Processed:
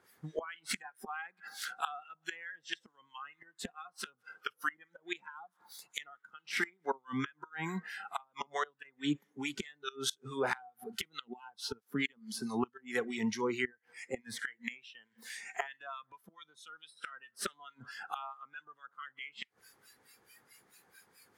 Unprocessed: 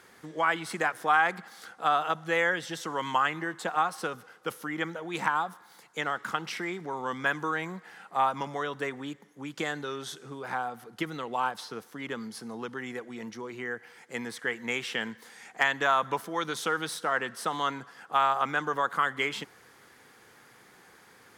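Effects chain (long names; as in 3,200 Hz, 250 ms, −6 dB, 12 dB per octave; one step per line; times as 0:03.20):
0:06.97–0:08.85: downward compressor 20 to 1, threshold −31 dBFS, peak gain reduction 12 dB
two-band tremolo in antiphase 4.6 Hz, depth 70%, crossover 1,300 Hz
dynamic equaliser 2,800 Hz, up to +3 dB, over −41 dBFS, Q 0.92
gate with flip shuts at −29 dBFS, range −25 dB
noise reduction from a noise print of the clip's start 18 dB
level +9 dB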